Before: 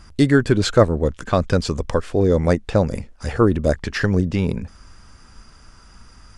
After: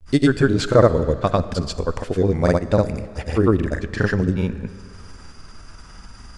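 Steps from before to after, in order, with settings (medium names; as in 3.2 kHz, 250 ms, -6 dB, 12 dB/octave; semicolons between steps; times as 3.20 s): upward compressor, threshold -31 dBFS; granulator, pitch spread up and down by 0 st; algorithmic reverb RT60 2.3 s, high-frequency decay 0.85×, pre-delay 5 ms, DRR 14 dB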